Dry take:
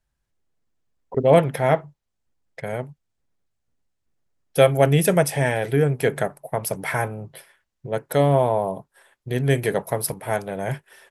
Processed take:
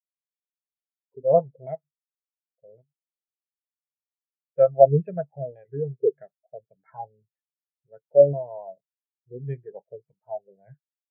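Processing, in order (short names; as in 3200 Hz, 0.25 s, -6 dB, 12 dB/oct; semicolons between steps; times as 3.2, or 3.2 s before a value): LFO low-pass saw down 1.8 Hz 360–3500 Hz; spectral expander 2.5:1; gain -1 dB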